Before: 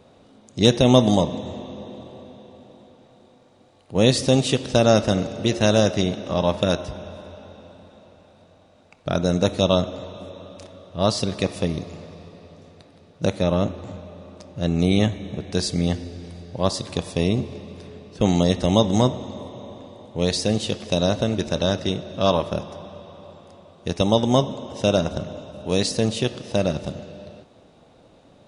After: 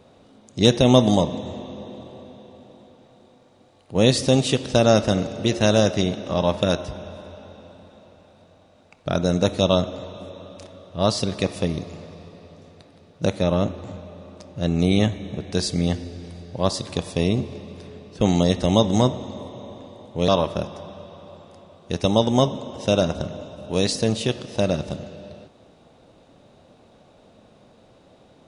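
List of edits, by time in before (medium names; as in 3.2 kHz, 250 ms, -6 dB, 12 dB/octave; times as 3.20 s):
20.28–22.24 s: delete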